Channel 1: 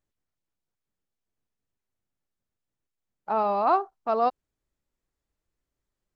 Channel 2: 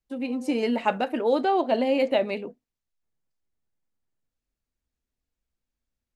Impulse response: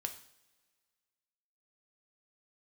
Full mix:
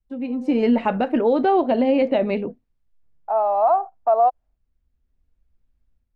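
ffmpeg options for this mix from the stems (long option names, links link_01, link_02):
-filter_complex "[0:a]lowpass=frequency=1600:poles=1,agate=range=-33dB:threshold=-50dB:ratio=3:detection=peak,highpass=frequency=690:width_type=q:width=5,volume=-1.5dB[link_01];[1:a]highshelf=frequency=6100:gain=-10,volume=-2dB,asplit=2[link_02][link_03];[link_03]apad=whole_len=271654[link_04];[link_01][link_04]sidechaincompress=threshold=-42dB:ratio=8:attack=16:release=1300[link_05];[link_05][link_02]amix=inputs=2:normalize=0,aemphasis=mode=reproduction:type=bsi,dynaudnorm=framelen=350:gausssize=3:maxgain=7.5dB,alimiter=limit=-10dB:level=0:latency=1:release=125"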